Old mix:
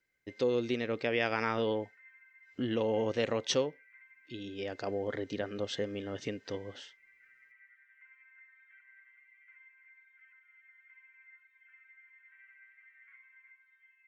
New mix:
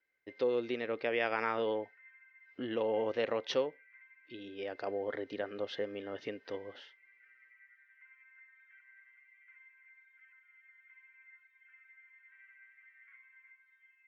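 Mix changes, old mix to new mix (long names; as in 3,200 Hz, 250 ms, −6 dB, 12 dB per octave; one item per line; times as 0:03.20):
speech: add bass and treble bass −13 dB, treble −12 dB
master: add Chebyshev low-pass filter 5,200 Hz, order 3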